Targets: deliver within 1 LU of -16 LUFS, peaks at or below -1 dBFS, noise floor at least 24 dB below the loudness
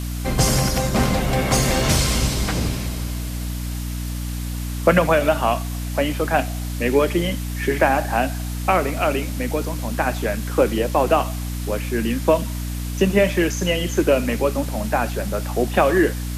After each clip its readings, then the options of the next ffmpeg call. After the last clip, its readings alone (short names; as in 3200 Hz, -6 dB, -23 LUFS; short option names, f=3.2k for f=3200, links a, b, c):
hum 60 Hz; harmonics up to 300 Hz; hum level -24 dBFS; noise floor -27 dBFS; noise floor target -45 dBFS; loudness -21.0 LUFS; peak -2.0 dBFS; loudness target -16.0 LUFS
-> -af "bandreject=f=60:t=h:w=6,bandreject=f=120:t=h:w=6,bandreject=f=180:t=h:w=6,bandreject=f=240:t=h:w=6,bandreject=f=300:t=h:w=6"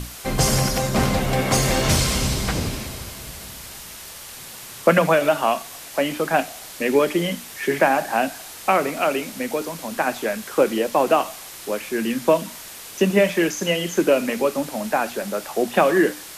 hum none; noise floor -38 dBFS; noise floor target -46 dBFS
-> -af "afftdn=nr=8:nf=-38"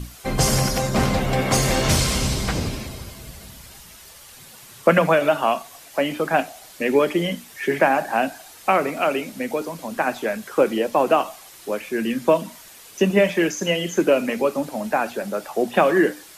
noise floor -45 dBFS; noise floor target -46 dBFS
-> -af "afftdn=nr=6:nf=-45"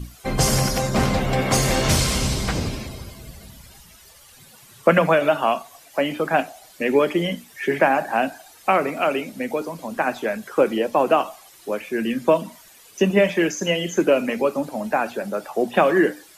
noise floor -49 dBFS; loudness -21.5 LUFS; peak -2.0 dBFS; loudness target -16.0 LUFS
-> -af "volume=5.5dB,alimiter=limit=-1dB:level=0:latency=1"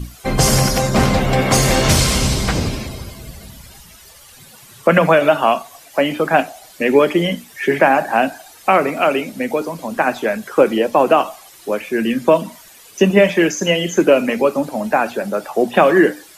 loudness -16.0 LUFS; peak -1.0 dBFS; noise floor -43 dBFS